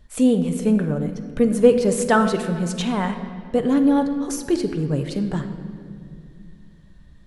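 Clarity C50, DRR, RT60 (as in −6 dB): 8.5 dB, 6.5 dB, 2.3 s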